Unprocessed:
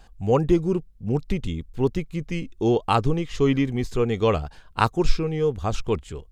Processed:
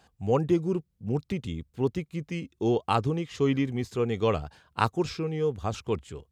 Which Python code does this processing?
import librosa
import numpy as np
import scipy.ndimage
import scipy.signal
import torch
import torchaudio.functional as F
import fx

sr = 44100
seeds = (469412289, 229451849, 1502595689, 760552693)

y = scipy.signal.sosfilt(scipy.signal.butter(4, 74.0, 'highpass', fs=sr, output='sos'), x)
y = y * 10.0 ** (-4.5 / 20.0)